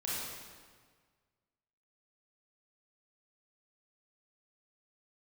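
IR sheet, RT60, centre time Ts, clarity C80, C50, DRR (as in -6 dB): 1.6 s, 119 ms, -0.5 dB, -3.0 dB, -7.5 dB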